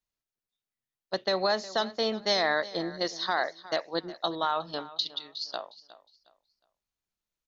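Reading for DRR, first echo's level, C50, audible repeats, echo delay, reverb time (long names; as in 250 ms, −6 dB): no reverb audible, −17.5 dB, no reverb audible, 2, 361 ms, no reverb audible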